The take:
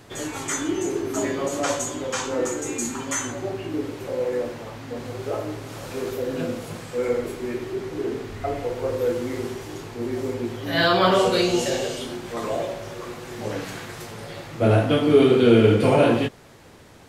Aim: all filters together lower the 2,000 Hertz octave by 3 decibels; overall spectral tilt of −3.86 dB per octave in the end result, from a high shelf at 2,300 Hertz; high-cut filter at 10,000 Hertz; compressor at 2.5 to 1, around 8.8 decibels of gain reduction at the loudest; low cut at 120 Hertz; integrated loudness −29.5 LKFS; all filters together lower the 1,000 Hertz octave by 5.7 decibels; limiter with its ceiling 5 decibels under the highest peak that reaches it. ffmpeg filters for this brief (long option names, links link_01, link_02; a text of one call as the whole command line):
ffmpeg -i in.wav -af "highpass=120,lowpass=10000,equalizer=frequency=1000:width_type=o:gain=-8.5,equalizer=frequency=2000:width_type=o:gain=-3,highshelf=frequency=2300:gain=4,acompressor=threshold=-25dB:ratio=2.5,volume=0.5dB,alimiter=limit=-18dB:level=0:latency=1" out.wav